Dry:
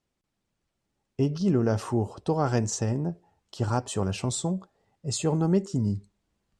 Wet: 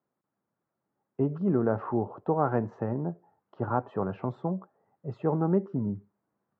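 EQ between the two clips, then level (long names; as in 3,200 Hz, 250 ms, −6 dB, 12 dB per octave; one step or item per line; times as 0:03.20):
high-pass filter 110 Hz 24 dB per octave
low-pass filter 1,400 Hz 24 dB per octave
spectral tilt +2 dB per octave
+2.0 dB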